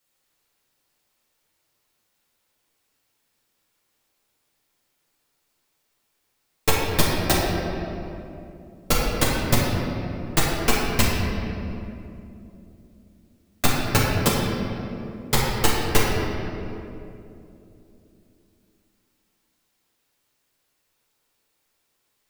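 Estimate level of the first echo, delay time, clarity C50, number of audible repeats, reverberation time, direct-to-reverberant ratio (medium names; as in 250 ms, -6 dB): no echo, no echo, -1.5 dB, no echo, 2.9 s, -6.5 dB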